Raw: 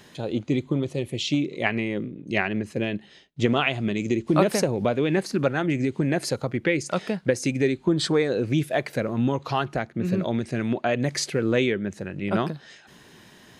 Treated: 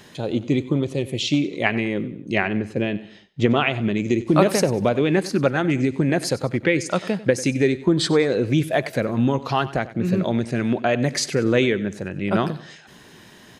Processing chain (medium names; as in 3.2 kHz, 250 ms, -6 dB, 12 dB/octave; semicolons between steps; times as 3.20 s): 2.35–4.07 s: treble shelf 5.1 kHz -10 dB; feedback delay 95 ms, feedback 40%, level -17 dB; trim +3.5 dB